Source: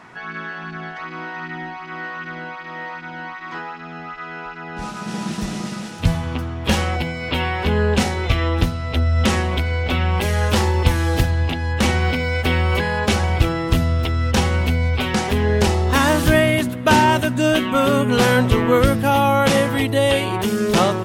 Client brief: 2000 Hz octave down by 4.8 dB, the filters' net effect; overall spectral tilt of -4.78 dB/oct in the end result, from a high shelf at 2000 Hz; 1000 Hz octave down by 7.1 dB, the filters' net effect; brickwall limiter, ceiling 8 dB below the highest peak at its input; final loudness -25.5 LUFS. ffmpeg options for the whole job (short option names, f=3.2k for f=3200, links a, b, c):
-af "equalizer=f=1k:t=o:g=-9,highshelf=f=2k:g=7.5,equalizer=f=2k:t=o:g=-8,volume=-5dB,alimiter=limit=-14dB:level=0:latency=1"